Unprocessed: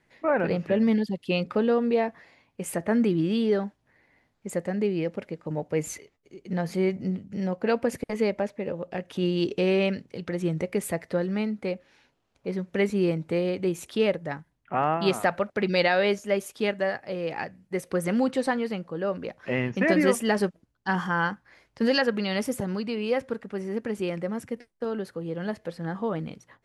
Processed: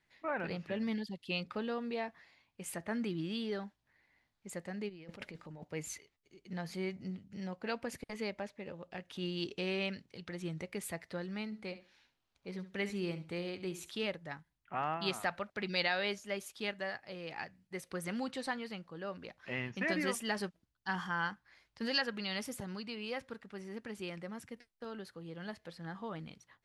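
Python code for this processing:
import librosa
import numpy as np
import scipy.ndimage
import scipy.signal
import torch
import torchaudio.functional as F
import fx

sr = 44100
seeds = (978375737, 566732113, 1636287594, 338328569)

y = fx.over_compress(x, sr, threshold_db=-37.0, ratio=-1.0, at=(4.88, 5.63), fade=0.02)
y = fx.room_flutter(y, sr, wall_m=11.9, rt60_s=0.31, at=(11.45, 14.07))
y = fx.graphic_eq(y, sr, hz=(125, 250, 500, 4000), db=(-3, -4, -7, 5))
y = y * librosa.db_to_amplitude(-8.5)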